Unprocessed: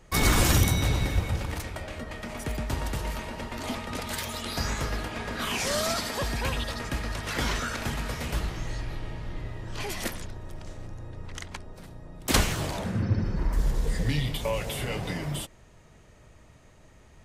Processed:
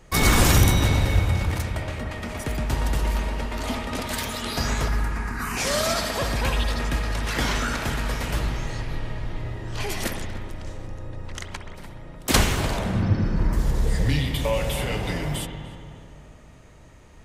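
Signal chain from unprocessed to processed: 4.88–5.57 fixed phaser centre 1400 Hz, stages 4; darkening echo 0.296 s, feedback 55%, low-pass 1800 Hz, level -11 dB; spring tank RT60 1.7 s, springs 59 ms, chirp 80 ms, DRR 7 dB; gain +3.5 dB

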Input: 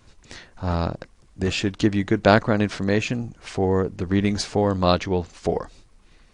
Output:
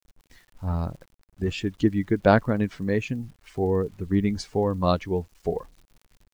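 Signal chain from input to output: per-bin expansion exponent 1.5; high shelf 2300 Hz -9 dB; crackle 35/s -42 dBFS; bit-crush 10-bit

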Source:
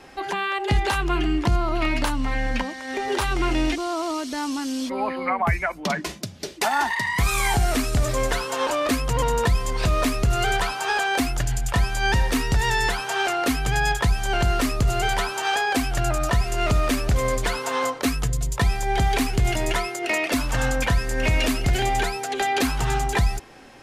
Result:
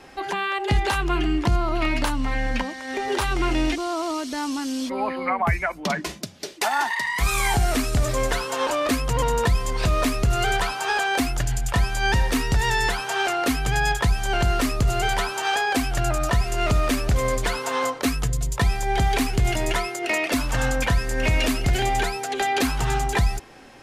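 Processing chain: 6.24–7.2 HPF 250 Hz -> 620 Hz 6 dB/oct

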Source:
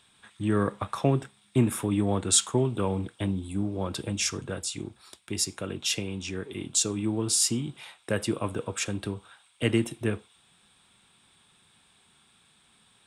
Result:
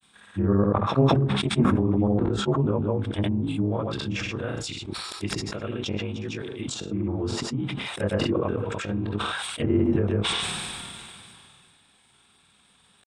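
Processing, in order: short-time reversal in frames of 59 ms; treble ducked by the level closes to 880 Hz, closed at -26.5 dBFS; grains, pitch spread up and down by 0 st; sustainer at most 23 dB/s; gain +6 dB

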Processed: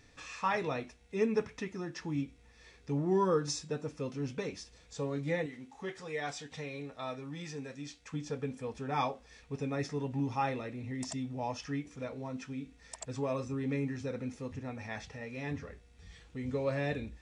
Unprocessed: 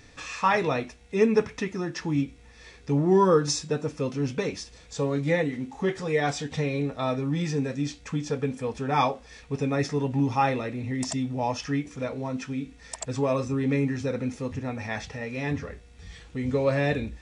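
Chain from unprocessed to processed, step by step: 5.46–8.14 low shelf 470 Hz -8.5 dB; gain -9 dB

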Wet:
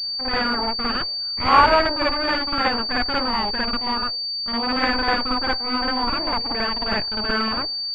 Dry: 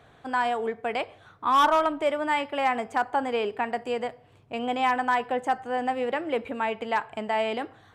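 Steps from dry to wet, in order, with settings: added harmonics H 3 -7 dB, 5 -38 dB, 6 -11 dB, 7 -38 dB, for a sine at -14.5 dBFS; gate with hold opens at -53 dBFS; reverse echo 55 ms -4.5 dB; pulse-width modulation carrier 4600 Hz; gain +5.5 dB

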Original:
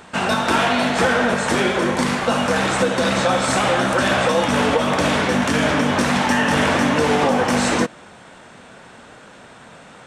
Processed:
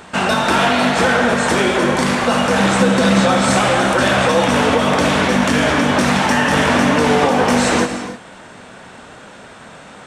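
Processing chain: 2.6–3.54 bell 210 Hz +7.5 dB 0.44 oct; in parallel at -2 dB: limiter -12.5 dBFS, peak gain reduction 7.5 dB; on the sum: non-linear reverb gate 0.34 s flat, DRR 8 dB; gain -1 dB

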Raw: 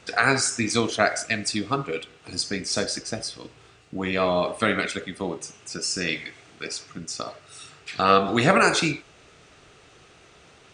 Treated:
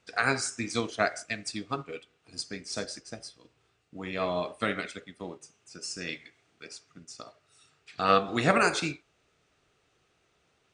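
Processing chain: upward expander 1.5:1, over -42 dBFS; gain -4 dB

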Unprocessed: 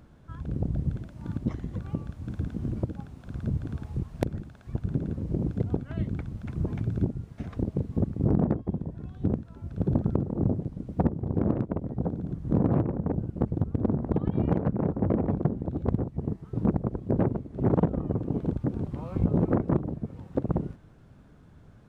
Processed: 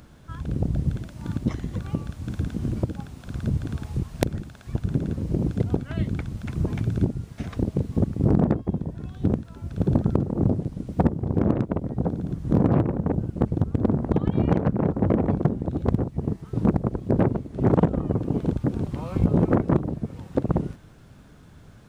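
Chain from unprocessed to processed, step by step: high shelf 2200 Hz +10 dB; gain +4 dB

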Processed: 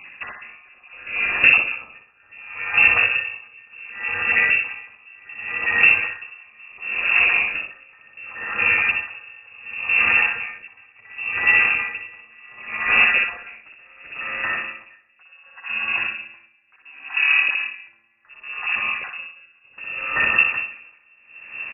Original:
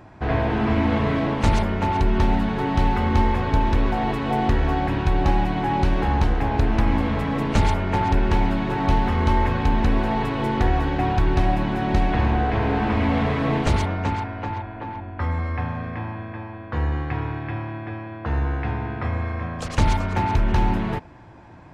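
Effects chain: random spectral dropouts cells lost 33%; multi-head echo 0.244 s, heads first and second, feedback 59%, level -16 dB; in parallel at -4 dB: overloaded stage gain 15.5 dB; on the sum: dynamic EQ 1400 Hz, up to +5 dB, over -41 dBFS, Q 3; on a send: feedback echo 61 ms, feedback 43%, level -4 dB; on the sum: inverted band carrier 2700 Hz; 1.52–2.3 notch 1900 Hz, Q 7.8; 17.16–17.88 tilt +4 dB/oct; dB-linear tremolo 0.69 Hz, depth 33 dB

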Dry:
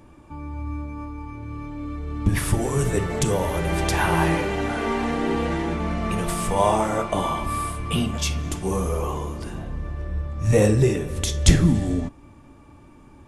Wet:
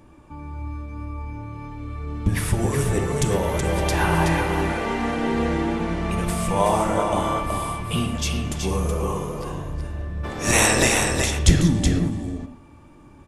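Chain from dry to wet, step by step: 10.23–11 spectral limiter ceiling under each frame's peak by 30 dB; echo 0.374 s -5.5 dB; reverb, pre-delay 3 ms, DRR 8.5 dB; gain -1 dB

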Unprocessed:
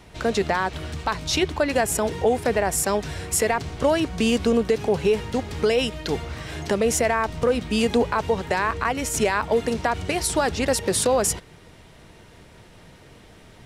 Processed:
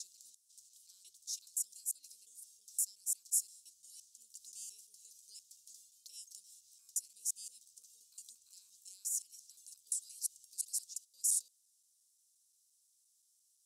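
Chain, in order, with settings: slices in reverse order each 0.174 s, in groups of 3; inverse Chebyshev high-pass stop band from 2000 Hz, stop band 60 dB; gain -7.5 dB

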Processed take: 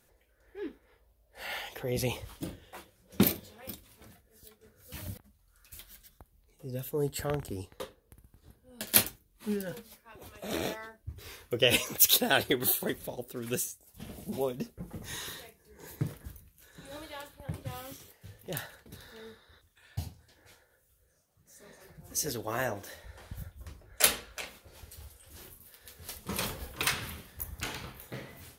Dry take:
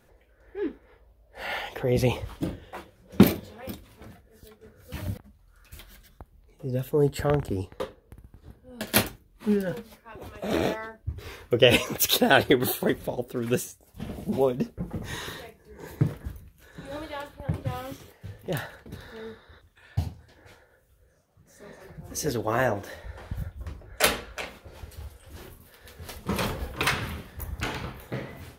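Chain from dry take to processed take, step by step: bell 13000 Hz +12.5 dB 2.5 oct; gain -9 dB

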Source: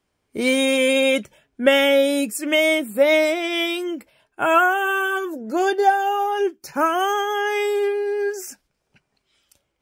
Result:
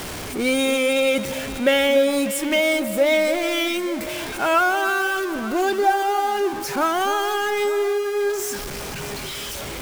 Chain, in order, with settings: zero-crossing step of -22 dBFS; echo with dull and thin repeats by turns 0.296 s, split 1700 Hz, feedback 68%, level -11 dB; gain -3.5 dB

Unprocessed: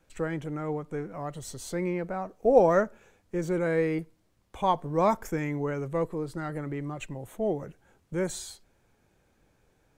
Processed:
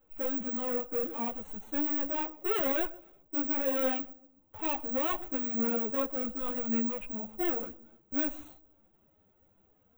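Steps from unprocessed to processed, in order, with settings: median filter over 25 samples; low shelf 290 Hz -6.5 dB; harmonic-percussive split percussive -4 dB; high shelf 9700 Hz -4.5 dB; in parallel at +2.5 dB: limiter -23.5 dBFS, peak gain reduction 12 dB; on the sum: hard clip -27 dBFS, distortion -6 dB; formant-preserving pitch shift +8.5 st; darkening echo 0.128 s, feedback 43%, low-pass 850 Hz, level -19 dB; on a send at -21 dB: reverb RT60 0.45 s, pre-delay 3 ms; on the sum: careless resampling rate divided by 2×, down none, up zero stuff; Butterworth band-stop 4800 Hz, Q 2.5; ensemble effect

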